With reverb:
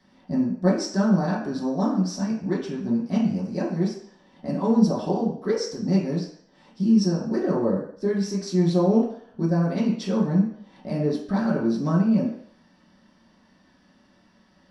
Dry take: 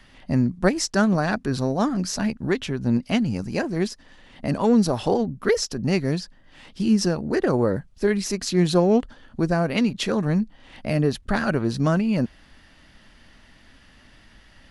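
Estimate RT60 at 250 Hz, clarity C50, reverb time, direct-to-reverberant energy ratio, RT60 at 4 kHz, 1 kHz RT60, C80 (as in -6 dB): 0.50 s, 5.5 dB, 0.60 s, -7.5 dB, 0.60 s, 0.60 s, 8.5 dB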